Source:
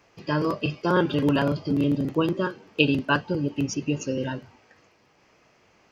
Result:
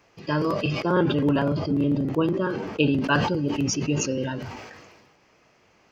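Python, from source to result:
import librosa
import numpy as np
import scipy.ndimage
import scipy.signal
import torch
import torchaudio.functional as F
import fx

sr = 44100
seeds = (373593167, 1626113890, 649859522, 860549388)

y = fx.high_shelf(x, sr, hz=2300.0, db=-9.5, at=(0.8, 3.04))
y = fx.sustainer(y, sr, db_per_s=37.0)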